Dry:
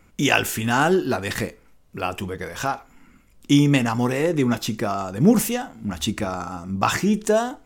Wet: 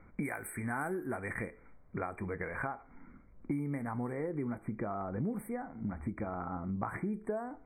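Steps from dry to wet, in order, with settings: level-controlled noise filter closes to 1.5 kHz, open at -15 dBFS; treble shelf 2.3 kHz +8.5 dB, from 2.67 s -5 dB, from 4.13 s -10.5 dB; compression 6:1, threshold -32 dBFS, peak gain reduction 21 dB; brick-wall FIR band-stop 2.4–7.9 kHz; trim -2 dB

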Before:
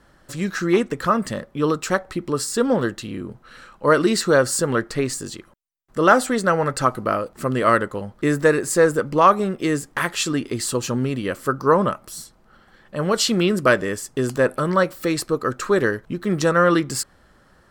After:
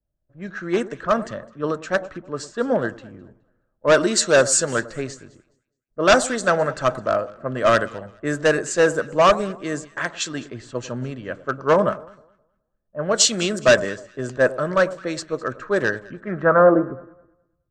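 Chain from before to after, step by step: level-controlled noise filter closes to 530 Hz, open at -15.5 dBFS; graphic EQ with 31 bands 630 Hz +11 dB, 1.6 kHz +7 dB, 5 kHz -5 dB, 8 kHz +4 dB; hard clipper -7.5 dBFS, distortion -13 dB; low-pass sweep 6.4 kHz -> 150 Hz, 15.86–17.32 s; echo whose repeats swap between lows and highs 105 ms, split 1.1 kHz, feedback 65%, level -14 dB; three bands expanded up and down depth 70%; trim -4.5 dB

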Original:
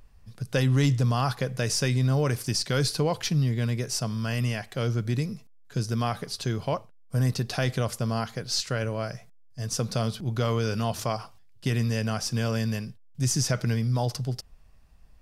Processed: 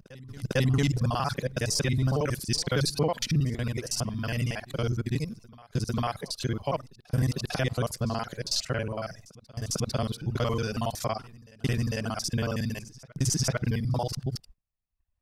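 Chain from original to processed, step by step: time reversed locally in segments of 46 ms; gate -47 dBFS, range -22 dB; reverb removal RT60 0.81 s; reverse echo 450 ms -22 dB

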